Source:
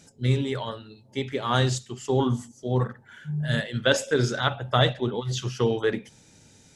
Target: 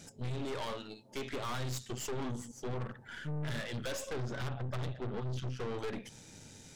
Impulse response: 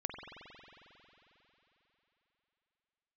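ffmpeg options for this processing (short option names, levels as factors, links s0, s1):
-filter_complex "[0:a]asettb=1/sr,asplit=3[s0][s1][s2];[s0]atrim=end=0.454[s3];[s1]atrim=start=0.45:end=1.33,asetpts=PTS-STARTPTS,afade=t=in:d=0.004:c=qsin,afade=t=out:st=0.876:d=0.004:c=qsin,highpass=240[s4];[s2]atrim=start=1.326[s5];[s3][s4]acrossfade=d=0.004:c1=hsin:c2=qsin[s6];[s6][s5]acrossfade=d=0.004:c1=qsin:c2=hsin,asettb=1/sr,asplit=3[s7][s8][s9];[s7]atrim=end=4.094[s10];[s8]atrim=start=4.09:end=5.6,asetpts=PTS-STARTPTS,afade=t=in:d=0.004:c=qsin,afade=t=out:st=1.506:d=0.004:c=qsin,aemphasis=mode=reproduction:type=bsi[s11];[s9]atrim=start=5.596[s12];[s10][s11]acrossfade=d=0.004:c1=hsin:c2=qsin[s13];[s13][s12]acrossfade=d=0.004:c1=qsin:c2=hsin,acompressor=threshold=0.0282:ratio=5,aeval=exprs='(tanh(112*val(0)+0.75)-tanh(0.75))/112':c=same,volume=1.88"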